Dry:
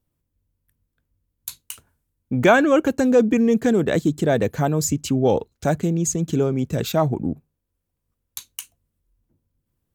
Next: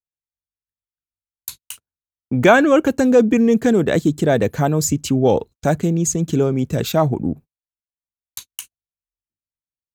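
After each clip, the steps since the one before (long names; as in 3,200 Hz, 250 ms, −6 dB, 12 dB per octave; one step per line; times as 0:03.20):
noise gate −37 dBFS, range −35 dB
level +3 dB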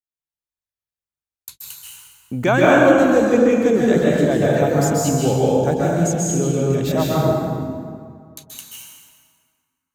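dense smooth reverb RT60 2.1 s, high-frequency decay 0.65×, pre-delay 120 ms, DRR −6 dB
level −6.5 dB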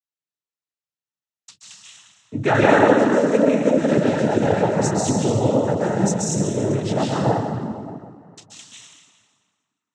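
cochlear-implant simulation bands 12
level −1.5 dB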